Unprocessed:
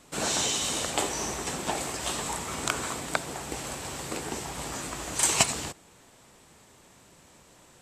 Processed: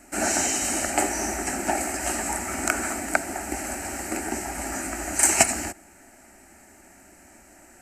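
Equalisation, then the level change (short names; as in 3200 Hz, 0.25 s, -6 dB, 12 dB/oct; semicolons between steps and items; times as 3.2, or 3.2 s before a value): bell 4800 Hz -2.5 dB; fixed phaser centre 710 Hz, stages 8; +8.0 dB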